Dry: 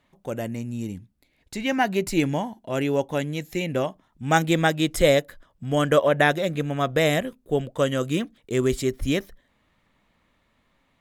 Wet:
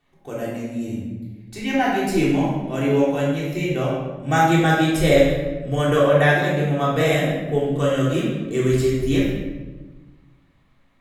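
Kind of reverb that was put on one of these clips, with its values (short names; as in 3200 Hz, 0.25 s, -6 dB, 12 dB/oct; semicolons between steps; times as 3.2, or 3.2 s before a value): shoebox room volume 790 m³, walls mixed, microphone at 3.5 m; gain -5.5 dB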